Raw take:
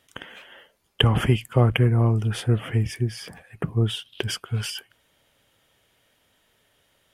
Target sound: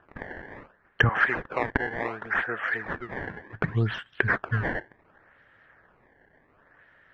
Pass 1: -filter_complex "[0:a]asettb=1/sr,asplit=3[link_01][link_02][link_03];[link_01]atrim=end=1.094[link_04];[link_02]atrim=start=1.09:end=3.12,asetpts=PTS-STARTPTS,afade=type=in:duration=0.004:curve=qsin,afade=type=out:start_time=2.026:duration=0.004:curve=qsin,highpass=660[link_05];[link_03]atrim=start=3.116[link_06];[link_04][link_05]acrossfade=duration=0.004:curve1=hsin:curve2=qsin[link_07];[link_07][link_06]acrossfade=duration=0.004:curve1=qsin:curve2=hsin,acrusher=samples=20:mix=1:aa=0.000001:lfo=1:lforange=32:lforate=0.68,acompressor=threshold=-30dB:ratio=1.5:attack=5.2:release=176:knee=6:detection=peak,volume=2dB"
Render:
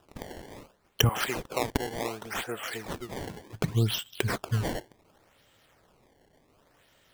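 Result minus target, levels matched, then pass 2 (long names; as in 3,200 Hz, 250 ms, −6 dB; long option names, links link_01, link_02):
2,000 Hz band −8.0 dB
-filter_complex "[0:a]asettb=1/sr,asplit=3[link_01][link_02][link_03];[link_01]atrim=end=1.094[link_04];[link_02]atrim=start=1.09:end=3.12,asetpts=PTS-STARTPTS,afade=type=in:duration=0.004:curve=qsin,afade=type=out:start_time=2.026:duration=0.004:curve=qsin,highpass=660[link_05];[link_03]atrim=start=3.116[link_06];[link_04][link_05]acrossfade=duration=0.004:curve1=hsin:curve2=qsin[link_07];[link_07][link_06]acrossfade=duration=0.004:curve1=qsin:curve2=hsin,acrusher=samples=20:mix=1:aa=0.000001:lfo=1:lforange=32:lforate=0.68,acompressor=threshold=-30dB:ratio=1.5:attack=5.2:release=176:knee=6:detection=peak,lowpass=frequency=1700:width_type=q:width=5.6,volume=2dB"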